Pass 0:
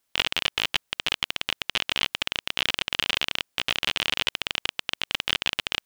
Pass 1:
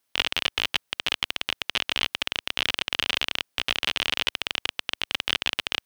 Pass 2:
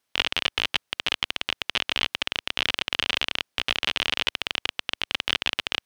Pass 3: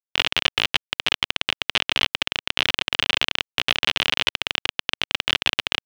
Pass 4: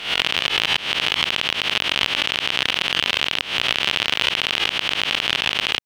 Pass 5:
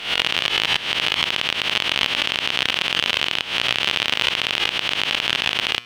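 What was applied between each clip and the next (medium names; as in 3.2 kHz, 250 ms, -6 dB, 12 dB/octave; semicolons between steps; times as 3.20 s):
high-pass 74 Hz 6 dB/octave; band-stop 7.2 kHz, Q 12
treble shelf 10 kHz -10 dB; trim +1 dB
in parallel at 0 dB: peak limiter -9 dBFS, peak gain reduction 8 dB; on the sum: word length cut 8-bit, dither none; trim -1 dB
reverse spectral sustain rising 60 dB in 0.51 s; peak limiter -3.5 dBFS, peak gain reduction 6 dB; trim +2 dB
feedback comb 120 Hz, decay 1.1 s, harmonics all, mix 50%; trim +5.5 dB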